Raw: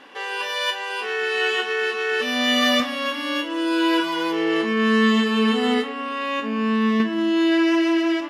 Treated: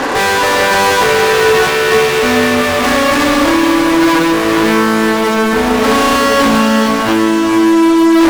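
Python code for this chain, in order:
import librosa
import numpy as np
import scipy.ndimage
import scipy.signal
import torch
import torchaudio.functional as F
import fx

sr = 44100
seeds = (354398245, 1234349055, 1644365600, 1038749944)

y = scipy.signal.sosfilt(scipy.signal.butter(2, 200.0, 'highpass', fs=sr, output='sos'), x)
y = fx.over_compress(y, sr, threshold_db=-29.0, ratio=-1.0)
y = scipy.signal.lfilter(np.full(14, 1.0 / 14), 1.0, y)
y = fx.fuzz(y, sr, gain_db=45.0, gate_db=-51.0)
y = fx.echo_diffused(y, sr, ms=470, feedback_pct=42, wet_db=-4)
y = F.gain(torch.from_numpy(y), 2.0).numpy()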